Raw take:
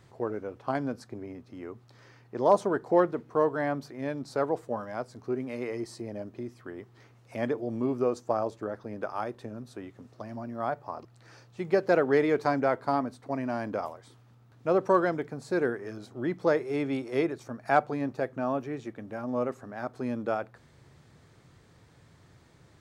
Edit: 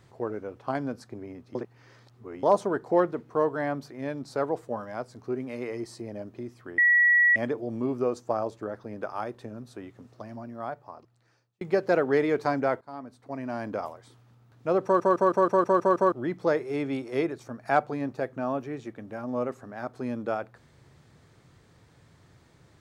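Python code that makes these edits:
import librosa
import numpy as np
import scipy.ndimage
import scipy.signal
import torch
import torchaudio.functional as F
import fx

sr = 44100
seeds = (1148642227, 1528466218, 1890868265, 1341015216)

y = fx.edit(x, sr, fx.reverse_span(start_s=1.55, length_s=0.88),
    fx.bleep(start_s=6.78, length_s=0.58, hz=1930.0, db=-16.5),
    fx.fade_out_span(start_s=10.12, length_s=1.49),
    fx.fade_in_from(start_s=12.81, length_s=0.87, floor_db=-22.5),
    fx.stutter_over(start_s=14.84, slice_s=0.16, count=8), tone=tone)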